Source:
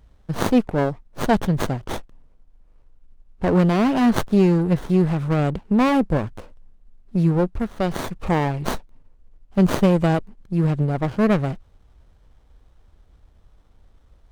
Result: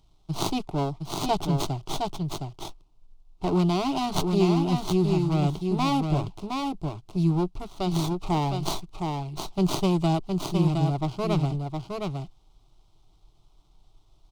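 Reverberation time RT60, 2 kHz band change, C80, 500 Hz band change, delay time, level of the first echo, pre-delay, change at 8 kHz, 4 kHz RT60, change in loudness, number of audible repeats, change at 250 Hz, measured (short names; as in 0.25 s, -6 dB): none, -10.0 dB, none, -6.0 dB, 0.714 s, -4.5 dB, none, +1.5 dB, none, -6.0 dB, 1, -6.0 dB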